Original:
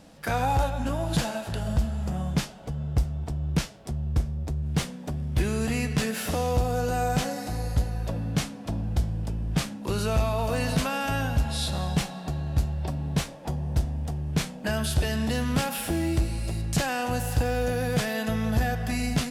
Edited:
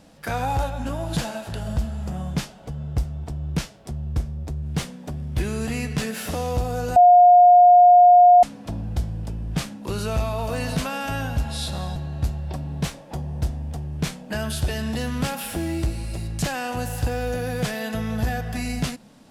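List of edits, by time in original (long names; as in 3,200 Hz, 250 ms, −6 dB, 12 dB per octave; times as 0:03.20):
0:06.96–0:08.43: beep over 713 Hz −8 dBFS
0:11.96–0:12.30: remove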